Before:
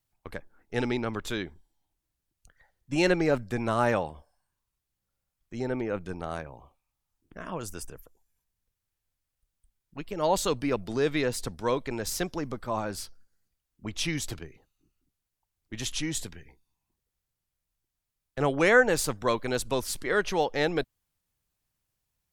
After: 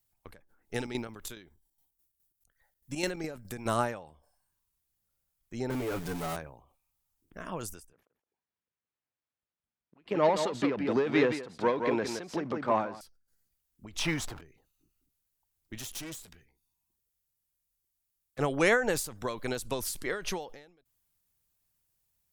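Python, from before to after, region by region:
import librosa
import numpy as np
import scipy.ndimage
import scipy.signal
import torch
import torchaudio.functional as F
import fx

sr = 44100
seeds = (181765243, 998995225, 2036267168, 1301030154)

y = fx.chain(x, sr, fx.high_shelf(hz=8000.0, db=10.0),
    fx.chopper(hz=4.8, depth_pct=65, duty_pct=60), at=(0.74, 3.77))
y = fx.chain(y, sr, fx.zero_step(step_db=-36.0),
    fx.comb(ms=7.0, depth=0.99),
    fx.tube_stage(drive_db=26.0, bias=0.25), at=(5.7, 6.36))
y = fx.chain(y, sr, fx.leveller(passes=2),
    fx.bandpass_edges(low_hz=190.0, high_hz=2500.0),
    fx.echo_single(ms=168, db=-7.5), at=(7.93, 13.01))
y = fx.chain(y, sr, fx.zero_step(step_db=-39.0),
    fx.lowpass(hz=2800.0, slope=6),
    fx.peak_eq(hz=1000.0, db=12.0, octaves=1.5), at=(13.99, 14.41))
y = fx.chain(y, sr, fx.high_shelf(hz=3500.0, db=4.0),
    fx.tube_stage(drive_db=37.0, bias=0.75), at=(15.78, 18.39))
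y = fx.high_shelf(y, sr, hz=7900.0, db=10.5)
y = fx.end_taper(y, sr, db_per_s=100.0)
y = F.gain(torch.from_numpy(y), -2.0).numpy()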